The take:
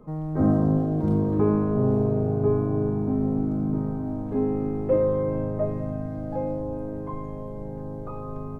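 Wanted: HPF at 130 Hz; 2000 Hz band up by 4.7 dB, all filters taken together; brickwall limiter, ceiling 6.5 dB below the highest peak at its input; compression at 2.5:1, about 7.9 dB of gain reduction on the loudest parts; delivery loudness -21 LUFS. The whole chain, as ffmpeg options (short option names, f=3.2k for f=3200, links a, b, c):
-af "highpass=130,equalizer=f=2k:t=o:g=6.5,acompressor=threshold=-29dB:ratio=2.5,volume=12.5dB,alimiter=limit=-12dB:level=0:latency=1"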